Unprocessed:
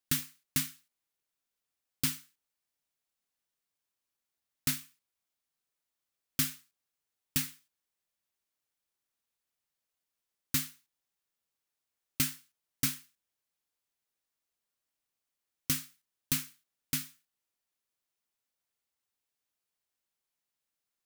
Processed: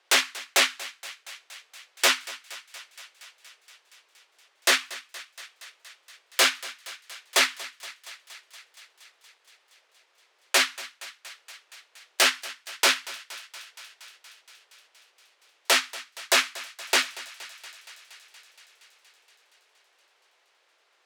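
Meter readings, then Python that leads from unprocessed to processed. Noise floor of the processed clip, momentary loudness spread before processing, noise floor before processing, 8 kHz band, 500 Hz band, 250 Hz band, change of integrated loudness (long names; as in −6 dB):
−67 dBFS, 13 LU, below −85 dBFS, +8.5 dB, +26.5 dB, −2.0 dB, +9.0 dB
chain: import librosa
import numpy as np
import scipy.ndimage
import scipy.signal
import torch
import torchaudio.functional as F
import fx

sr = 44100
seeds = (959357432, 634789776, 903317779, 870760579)

y = scipy.signal.sosfilt(scipy.signal.butter(2, 3200.0, 'lowpass', fs=sr, output='sos'), x)
y = fx.fold_sine(y, sr, drive_db=17, ceiling_db=-18.5)
y = fx.transient(y, sr, attack_db=-4, sustain_db=-8)
y = scipy.signal.sosfilt(scipy.signal.butter(6, 380.0, 'highpass', fs=sr, output='sos'), y)
y = fx.echo_thinned(y, sr, ms=235, feedback_pct=77, hz=520.0, wet_db=-17.5)
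y = y * 10.0 ** (8.0 / 20.0)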